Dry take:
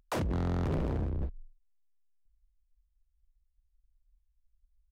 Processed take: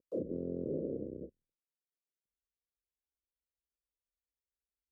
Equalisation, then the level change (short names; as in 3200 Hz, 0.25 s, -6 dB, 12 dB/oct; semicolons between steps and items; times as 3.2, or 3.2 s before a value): HPF 350 Hz 12 dB/oct; elliptic low-pass 530 Hz, stop band 40 dB; +3.5 dB